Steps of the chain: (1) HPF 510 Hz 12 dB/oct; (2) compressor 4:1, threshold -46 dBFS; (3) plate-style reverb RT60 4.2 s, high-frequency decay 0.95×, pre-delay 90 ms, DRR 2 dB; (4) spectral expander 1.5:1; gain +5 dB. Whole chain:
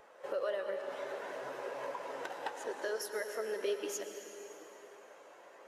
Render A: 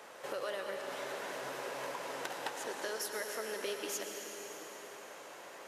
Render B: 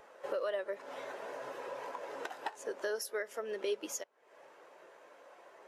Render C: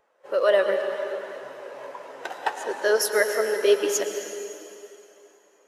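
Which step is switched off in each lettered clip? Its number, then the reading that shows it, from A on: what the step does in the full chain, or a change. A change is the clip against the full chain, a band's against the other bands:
4, 500 Hz band -5.5 dB; 3, momentary loudness spread change +3 LU; 2, mean gain reduction 8.0 dB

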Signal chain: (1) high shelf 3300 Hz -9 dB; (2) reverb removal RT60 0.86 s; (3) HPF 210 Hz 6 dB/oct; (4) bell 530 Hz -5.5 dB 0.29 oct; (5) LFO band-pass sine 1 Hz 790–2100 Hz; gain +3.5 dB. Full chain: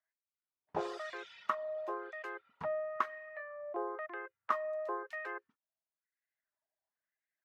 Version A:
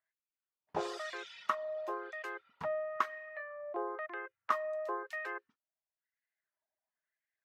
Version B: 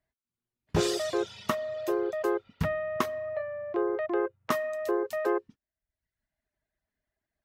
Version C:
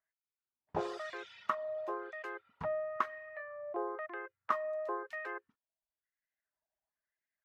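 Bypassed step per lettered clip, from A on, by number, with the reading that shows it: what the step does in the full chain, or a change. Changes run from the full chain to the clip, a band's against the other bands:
1, 4 kHz band +4.5 dB; 5, 1 kHz band -13.0 dB; 3, 125 Hz band +5.0 dB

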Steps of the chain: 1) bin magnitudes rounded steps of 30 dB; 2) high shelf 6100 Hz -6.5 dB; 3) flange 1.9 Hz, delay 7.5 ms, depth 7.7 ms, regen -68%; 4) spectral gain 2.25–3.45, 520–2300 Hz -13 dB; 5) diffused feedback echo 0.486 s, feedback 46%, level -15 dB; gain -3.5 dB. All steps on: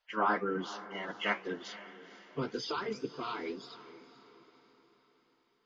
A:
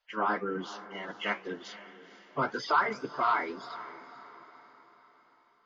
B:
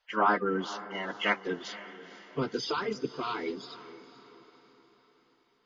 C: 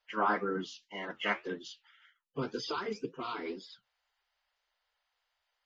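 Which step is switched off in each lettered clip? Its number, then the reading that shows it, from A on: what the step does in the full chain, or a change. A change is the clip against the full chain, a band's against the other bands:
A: 4, 1 kHz band +6.0 dB; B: 3, loudness change +4.5 LU; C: 5, echo-to-direct -14.0 dB to none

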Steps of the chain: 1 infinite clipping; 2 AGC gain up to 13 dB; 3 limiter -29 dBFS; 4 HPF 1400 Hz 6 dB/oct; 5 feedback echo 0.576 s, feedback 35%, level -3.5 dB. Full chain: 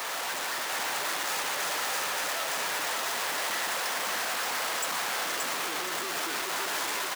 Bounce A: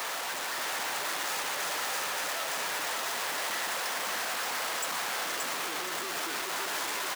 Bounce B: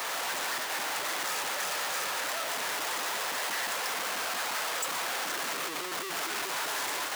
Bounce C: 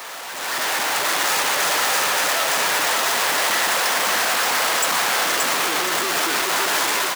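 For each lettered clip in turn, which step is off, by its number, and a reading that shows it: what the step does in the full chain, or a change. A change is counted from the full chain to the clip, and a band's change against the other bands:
2, loudness change -2.0 LU; 5, loudness change -1.5 LU; 3, mean gain reduction 10.5 dB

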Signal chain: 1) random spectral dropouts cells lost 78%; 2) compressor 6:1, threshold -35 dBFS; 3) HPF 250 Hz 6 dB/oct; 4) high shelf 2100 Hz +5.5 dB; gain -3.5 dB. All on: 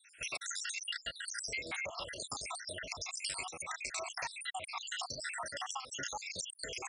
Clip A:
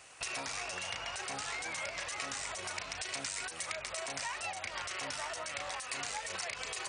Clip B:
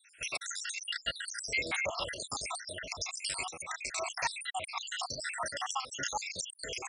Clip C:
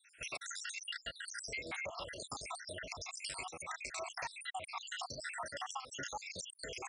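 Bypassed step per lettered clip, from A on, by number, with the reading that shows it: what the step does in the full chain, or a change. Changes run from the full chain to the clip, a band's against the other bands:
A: 1, 4 kHz band -2.0 dB; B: 2, mean gain reduction 3.0 dB; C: 4, 8 kHz band -4.5 dB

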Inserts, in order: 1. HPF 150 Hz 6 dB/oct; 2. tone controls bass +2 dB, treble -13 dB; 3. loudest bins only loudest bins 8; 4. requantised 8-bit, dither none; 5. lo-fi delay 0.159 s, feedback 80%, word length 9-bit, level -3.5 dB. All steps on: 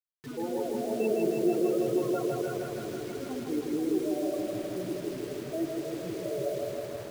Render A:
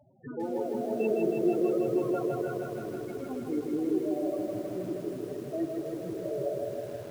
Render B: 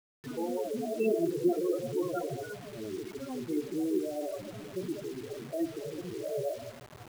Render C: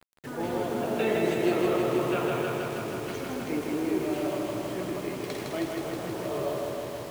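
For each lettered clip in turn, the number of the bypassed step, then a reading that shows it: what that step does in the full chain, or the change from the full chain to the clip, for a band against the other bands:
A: 4, distortion -19 dB; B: 5, crest factor change +2.0 dB; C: 3, 2 kHz band +6.5 dB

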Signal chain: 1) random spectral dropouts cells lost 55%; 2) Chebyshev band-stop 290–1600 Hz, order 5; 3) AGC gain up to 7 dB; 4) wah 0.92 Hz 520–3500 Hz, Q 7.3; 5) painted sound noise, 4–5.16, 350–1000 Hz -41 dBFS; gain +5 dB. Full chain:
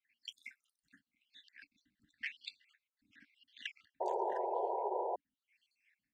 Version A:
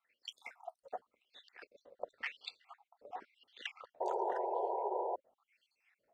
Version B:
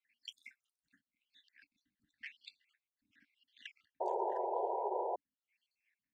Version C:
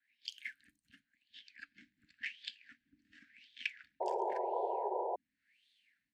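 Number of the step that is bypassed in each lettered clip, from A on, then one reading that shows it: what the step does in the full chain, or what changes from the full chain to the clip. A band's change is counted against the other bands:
2, momentary loudness spread change +4 LU; 3, loudness change +2.0 LU; 1, 2 kHz band +3.0 dB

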